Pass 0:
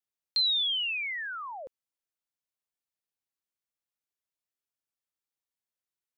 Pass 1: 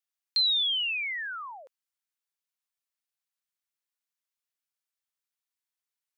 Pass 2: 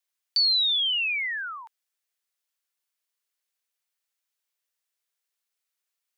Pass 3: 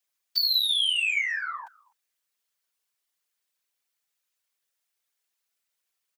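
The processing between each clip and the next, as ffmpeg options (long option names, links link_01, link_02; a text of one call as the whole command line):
ffmpeg -i in.wav -af "highpass=1000,volume=1.5dB" out.wav
ffmpeg -i in.wav -filter_complex "[0:a]afreqshift=370,asplit=2[link_01][link_02];[link_02]alimiter=level_in=5.5dB:limit=-24dB:level=0:latency=1,volume=-5.5dB,volume=0dB[link_03];[link_01][link_03]amix=inputs=2:normalize=0" out.wav
ffmpeg -i in.wav -filter_complex "[0:a]asplit=2[link_01][link_02];[link_02]adelay=250,highpass=300,lowpass=3400,asoftclip=type=hard:threshold=-26dB,volume=-25dB[link_03];[link_01][link_03]amix=inputs=2:normalize=0,aeval=exprs='0.15*(cos(1*acos(clip(val(0)/0.15,-1,1)))-cos(1*PI/2))+0.0188*(cos(5*acos(clip(val(0)/0.15,-1,1)))-cos(5*PI/2))':channel_layout=same,afftfilt=real='hypot(re,im)*cos(2*PI*random(0))':imag='hypot(re,im)*sin(2*PI*random(1))':win_size=512:overlap=0.75,volume=4.5dB" out.wav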